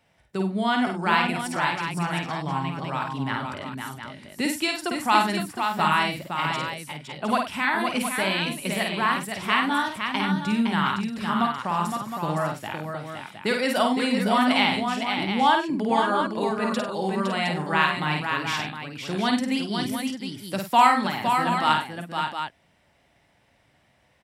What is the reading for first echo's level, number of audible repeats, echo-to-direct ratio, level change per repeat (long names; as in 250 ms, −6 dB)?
−4.0 dB, 5, −0.5 dB, repeats not evenly spaced